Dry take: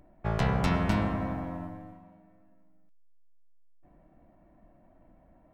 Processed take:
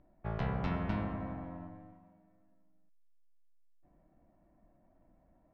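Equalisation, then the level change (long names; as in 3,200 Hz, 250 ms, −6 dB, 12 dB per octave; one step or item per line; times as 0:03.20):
high-frequency loss of the air 230 metres
−7.5 dB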